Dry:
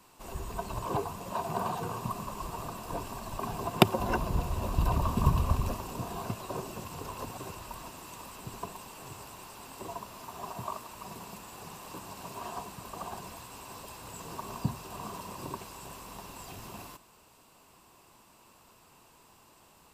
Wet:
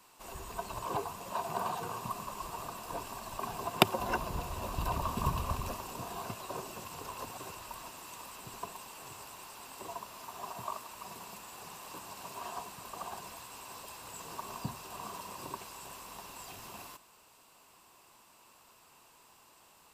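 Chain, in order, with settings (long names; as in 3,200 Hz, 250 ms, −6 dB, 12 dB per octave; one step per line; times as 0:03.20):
low-shelf EQ 420 Hz −9.5 dB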